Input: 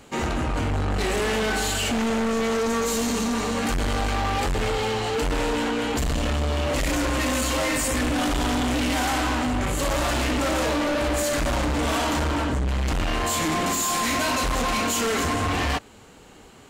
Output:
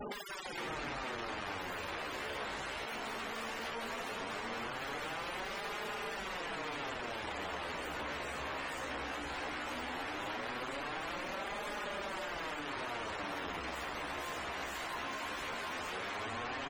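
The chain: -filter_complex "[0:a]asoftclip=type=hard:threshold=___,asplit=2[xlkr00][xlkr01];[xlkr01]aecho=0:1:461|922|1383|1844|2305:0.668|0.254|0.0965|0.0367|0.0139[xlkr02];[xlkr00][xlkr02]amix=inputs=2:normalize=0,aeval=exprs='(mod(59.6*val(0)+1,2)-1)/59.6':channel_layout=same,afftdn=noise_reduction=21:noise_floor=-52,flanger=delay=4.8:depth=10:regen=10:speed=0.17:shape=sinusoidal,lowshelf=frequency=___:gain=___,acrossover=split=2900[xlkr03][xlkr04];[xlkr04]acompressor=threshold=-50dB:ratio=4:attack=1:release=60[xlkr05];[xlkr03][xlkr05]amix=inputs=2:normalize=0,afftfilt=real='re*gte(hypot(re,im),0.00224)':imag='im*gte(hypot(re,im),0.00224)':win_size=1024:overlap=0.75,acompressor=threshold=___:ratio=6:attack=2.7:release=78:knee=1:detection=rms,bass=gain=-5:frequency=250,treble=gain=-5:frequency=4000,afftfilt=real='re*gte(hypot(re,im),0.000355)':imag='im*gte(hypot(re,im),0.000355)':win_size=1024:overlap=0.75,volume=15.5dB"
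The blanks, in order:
-29.5dB, 330, -5, -51dB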